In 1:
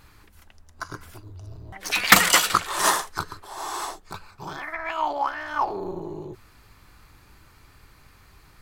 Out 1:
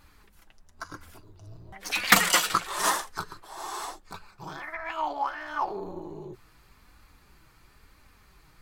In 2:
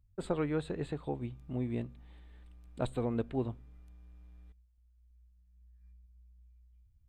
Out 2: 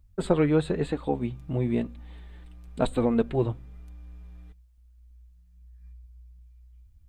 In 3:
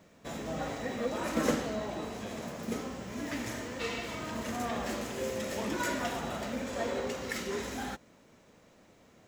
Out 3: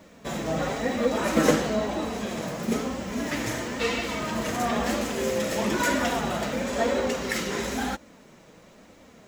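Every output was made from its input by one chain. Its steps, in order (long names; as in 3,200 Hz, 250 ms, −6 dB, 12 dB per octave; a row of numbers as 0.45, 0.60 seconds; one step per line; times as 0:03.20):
flanger 1 Hz, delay 3.3 ms, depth 3.2 ms, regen −34%
loudness normalisation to −27 LKFS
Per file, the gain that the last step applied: −1.0, +13.0, +12.0 decibels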